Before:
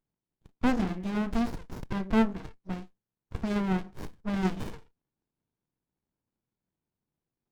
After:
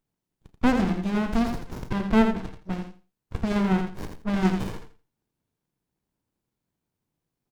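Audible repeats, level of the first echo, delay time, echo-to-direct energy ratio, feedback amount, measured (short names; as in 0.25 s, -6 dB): 2, -7.0 dB, 84 ms, -7.0 dB, 18%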